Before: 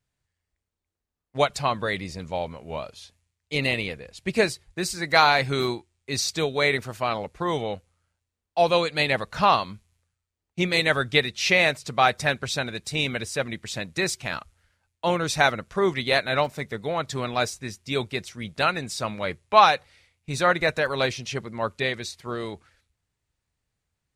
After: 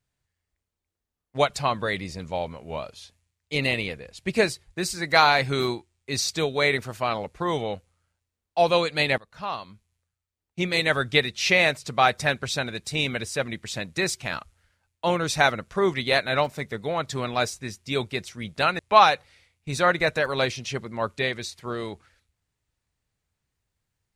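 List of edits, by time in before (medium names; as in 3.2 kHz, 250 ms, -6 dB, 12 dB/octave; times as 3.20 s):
9.18–11.08 s: fade in, from -20.5 dB
18.79–19.40 s: delete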